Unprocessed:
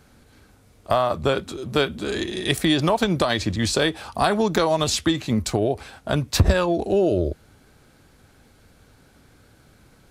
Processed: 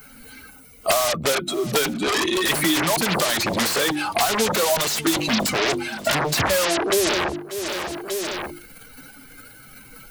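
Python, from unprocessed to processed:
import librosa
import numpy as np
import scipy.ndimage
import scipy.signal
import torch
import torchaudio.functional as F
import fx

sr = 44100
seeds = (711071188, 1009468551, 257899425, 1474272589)

p1 = fx.bin_expand(x, sr, power=2.0)
p2 = fx.hum_notches(p1, sr, base_hz=50, count=7)
p3 = fx.hpss(p2, sr, part='harmonic', gain_db=4)
p4 = fx.fold_sine(p3, sr, drive_db=20, ceiling_db=-18.0)
p5 = p3 + (p4 * librosa.db_to_amplitude(-5.0))
p6 = fx.transient(p5, sr, attack_db=1, sustain_db=6)
p7 = fx.low_shelf(p6, sr, hz=200.0, db=-12.0)
p8 = p7 + fx.echo_feedback(p7, sr, ms=589, feedback_pct=29, wet_db=-23, dry=0)
p9 = fx.band_squash(p8, sr, depth_pct=100)
y = p9 * librosa.db_to_amplitude(1.0)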